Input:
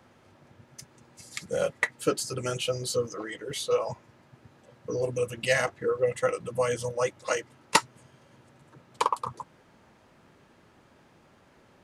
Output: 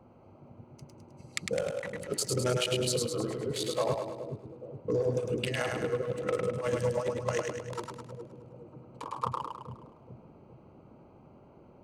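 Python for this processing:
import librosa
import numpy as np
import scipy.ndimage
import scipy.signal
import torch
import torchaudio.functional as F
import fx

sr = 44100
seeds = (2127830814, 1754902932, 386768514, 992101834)

y = fx.wiener(x, sr, points=25)
y = fx.over_compress(y, sr, threshold_db=-30.0, ratio=-0.5)
y = fx.echo_split(y, sr, split_hz=440.0, low_ms=419, high_ms=104, feedback_pct=52, wet_db=-3.5)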